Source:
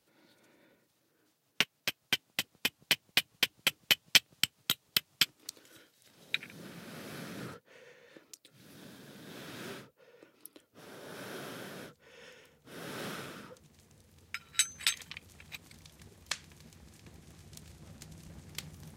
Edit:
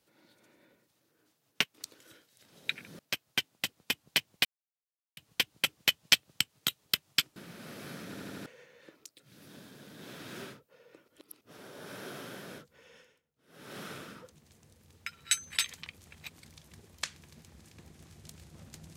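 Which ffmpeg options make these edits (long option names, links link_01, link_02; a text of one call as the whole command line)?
ffmpeg -i in.wav -filter_complex "[0:a]asplit=14[link_01][link_02][link_03][link_04][link_05][link_06][link_07][link_08][link_09][link_10][link_11][link_12][link_13][link_14];[link_01]atrim=end=1.742[link_15];[link_02]atrim=start=5.388:end=6.642[link_16];[link_03]atrim=start=1.738:end=3.2,asetpts=PTS-STARTPTS,afade=type=out:start_time=1.458:duration=0.004:curve=hsin,apad=pad_dur=0.72[link_17];[link_04]atrim=start=3.2:end=5.392,asetpts=PTS-STARTPTS,afade=type=in:duration=0.004:curve=hsin[link_18];[link_05]atrim=start=6.638:end=7.422[link_19];[link_06]atrim=start=7.338:end=7.422[link_20];[link_07]atrim=start=7.338:end=7.422[link_21];[link_08]atrim=start=7.338:end=7.422[link_22];[link_09]atrim=start=7.338:end=7.422[link_23];[link_10]atrim=start=7.738:end=10.362[link_24];[link_11]atrim=start=10.358:end=10.692,asetpts=PTS-STARTPTS,areverse[link_25];[link_12]atrim=start=10.688:end=12.51,asetpts=PTS-STARTPTS,afade=type=out:start_time=1.322:duration=0.5:silence=0.0944061[link_26];[link_13]atrim=start=12.51:end=12.75,asetpts=PTS-STARTPTS,volume=-20.5dB[link_27];[link_14]atrim=start=12.75,asetpts=PTS-STARTPTS,afade=type=in:duration=0.5:silence=0.0944061[link_28];[link_15][link_16]acrossfade=duration=0.004:curve1=hsin:curve2=hsin[link_29];[link_17][link_18]concat=n=2:v=0:a=1[link_30];[link_29][link_30]acrossfade=duration=0.004:curve1=hsin:curve2=hsin[link_31];[link_31][link_19]acrossfade=duration=0.004:curve1=hsin:curve2=hsin[link_32];[link_32][link_20]acrossfade=duration=0.004:curve1=hsin:curve2=hsin[link_33];[link_33][link_21]acrossfade=duration=0.004:curve1=hsin:curve2=hsin[link_34];[link_34][link_22]acrossfade=duration=0.004:curve1=hsin:curve2=hsin[link_35];[link_35][link_23]acrossfade=duration=0.004:curve1=hsin:curve2=hsin[link_36];[link_36][link_24]acrossfade=duration=0.004:curve1=hsin:curve2=hsin[link_37];[link_37][link_25]acrossfade=duration=0.004:curve1=hsin:curve2=hsin[link_38];[link_26][link_27][link_28]concat=n=3:v=0:a=1[link_39];[link_38][link_39]acrossfade=duration=0.004:curve1=hsin:curve2=hsin" out.wav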